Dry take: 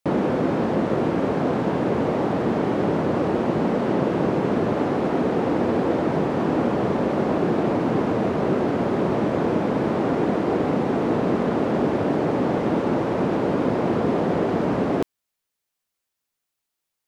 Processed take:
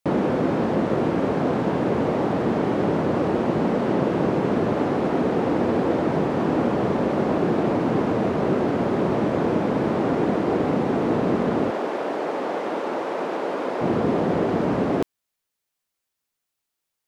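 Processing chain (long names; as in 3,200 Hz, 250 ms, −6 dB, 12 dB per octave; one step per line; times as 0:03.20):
0:11.70–0:13.81: high-pass filter 460 Hz 12 dB per octave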